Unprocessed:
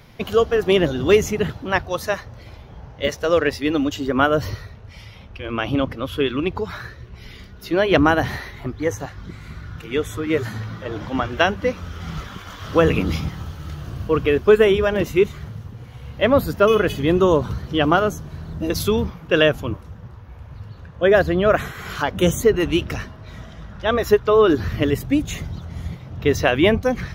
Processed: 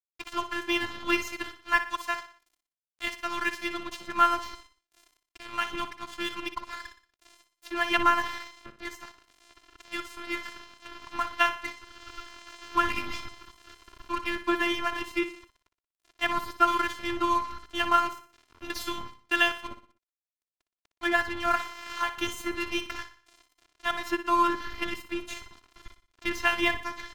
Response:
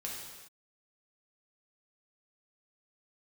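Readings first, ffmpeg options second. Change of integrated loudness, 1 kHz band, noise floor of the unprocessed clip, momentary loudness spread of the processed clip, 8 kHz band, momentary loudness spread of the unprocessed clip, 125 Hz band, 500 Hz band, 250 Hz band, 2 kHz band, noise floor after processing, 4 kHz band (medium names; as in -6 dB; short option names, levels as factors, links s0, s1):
-9.0 dB, -2.5 dB, -41 dBFS, 18 LU, -8.0 dB, 19 LU, -27.0 dB, -19.5 dB, -13.5 dB, -4.5 dB, under -85 dBFS, -5.5 dB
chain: -filter_complex "[0:a]afftfilt=real='hypot(re,im)*cos(PI*b)':imag='0':win_size=512:overlap=0.75,firequalizer=gain_entry='entry(230,0);entry(560,-16);entry(870,8);entry(8700,-3)':delay=0.05:min_phase=1,aeval=exprs='sgn(val(0))*max(abs(val(0))-0.0237,0)':c=same,asplit=2[s0][s1];[s1]aecho=0:1:60|120|180|240:0.266|0.114|0.0492|0.0212[s2];[s0][s2]amix=inputs=2:normalize=0,volume=0.562"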